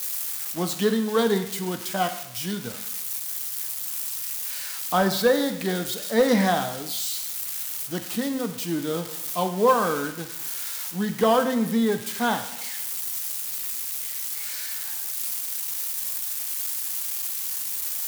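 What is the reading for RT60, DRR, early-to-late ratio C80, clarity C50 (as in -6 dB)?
0.85 s, 7.5 dB, 13.0 dB, 11.0 dB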